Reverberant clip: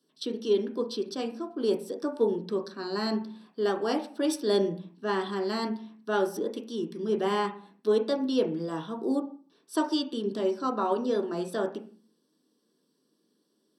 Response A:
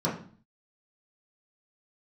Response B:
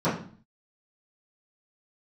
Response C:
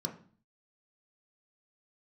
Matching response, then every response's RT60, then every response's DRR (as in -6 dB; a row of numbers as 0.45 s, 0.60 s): C; 0.45 s, 0.45 s, 0.45 s; -7.5 dB, -15.5 dB, 2.0 dB